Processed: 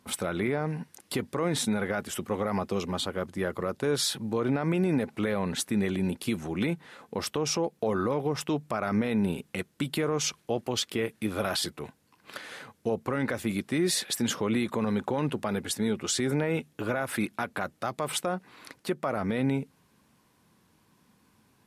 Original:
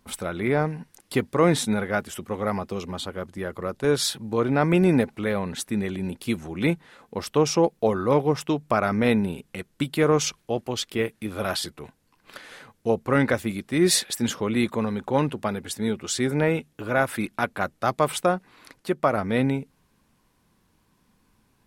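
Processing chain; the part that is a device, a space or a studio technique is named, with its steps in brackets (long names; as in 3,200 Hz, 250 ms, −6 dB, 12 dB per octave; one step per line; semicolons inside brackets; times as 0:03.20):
podcast mastering chain (high-pass filter 90 Hz; downward compressor 2.5 to 1, threshold −22 dBFS, peak gain reduction 6.5 dB; brickwall limiter −19.5 dBFS, peak gain reduction 9.5 dB; level +2 dB; MP3 112 kbit/s 32,000 Hz)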